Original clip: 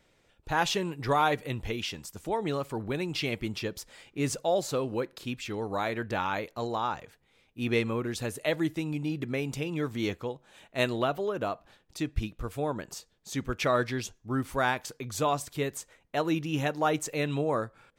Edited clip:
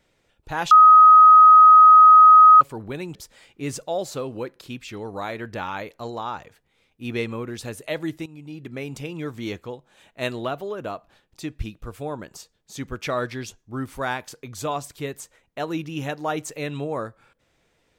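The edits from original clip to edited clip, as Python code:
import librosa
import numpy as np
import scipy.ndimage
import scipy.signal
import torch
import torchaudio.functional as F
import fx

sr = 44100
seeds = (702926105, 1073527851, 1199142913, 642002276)

y = fx.edit(x, sr, fx.bleep(start_s=0.71, length_s=1.9, hz=1260.0, db=-6.5),
    fx.cut(start_s=3.15, length_s=0.57),
    fx.fade_in_from(start_s=8.83, length_s=0.65, floor_db=-14.0), tone=tone)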